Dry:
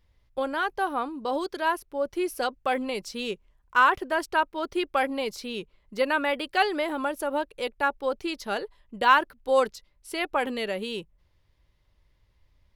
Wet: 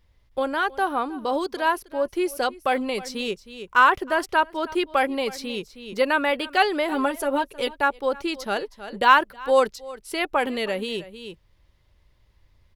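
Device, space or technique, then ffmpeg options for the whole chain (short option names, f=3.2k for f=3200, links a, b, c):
ducked delay: -filter_complex "[0:a]asplit=3[a][b][c];[b]adelay=316,volume=-4dB[d];[c]apad=whole_len=576437[e];[d][e]sidechaincompress=threshold=-40dB:ratio=20:attack=11:release=448[f];[a][f]amix=inputs=2:normalize=0,asettb=1/sr,asplit=3[g][h][i];[g]atrim=end=6.914[j];[h]atrim=start=6.91:end=7.8,asetpts=PTS-STARTPTS,afade=t=in:d=0.004:c=qsin,afade=t=out:st=0.886:d=0.004:c=qsin,aecho=1:1:7.5:0.71,atrim=end_sample=39249[k];[i]atrim=start=7.796[l];[j][k]acrossfade=d=0.004:c1=hsin:c2=qsin[m];[m][l]acrossfade=d=0.004:c1=qsin:c2=hsin,volume=3.5dB"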